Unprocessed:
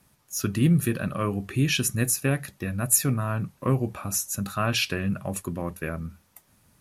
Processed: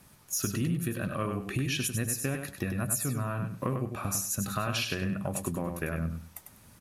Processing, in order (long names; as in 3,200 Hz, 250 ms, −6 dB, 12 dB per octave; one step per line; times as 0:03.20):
downward compressor 6 to 1, threshold −34 dBFS, peak gain reduction 17.5 dB
on a send: repeating echo 98 ms, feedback 21%, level −6 dB
on the sum: level +5 dB